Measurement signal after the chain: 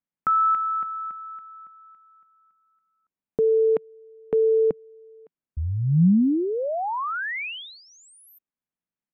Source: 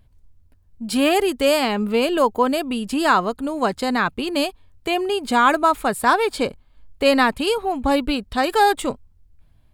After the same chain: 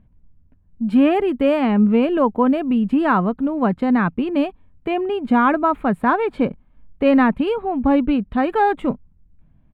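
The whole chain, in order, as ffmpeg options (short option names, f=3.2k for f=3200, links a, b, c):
-af "firequalizer=gain_entry='entry(110,0);entry(170,11);entry(390,0);entry(2400,-5);entry(5000,-27)':delay=0.05:min_phase=1"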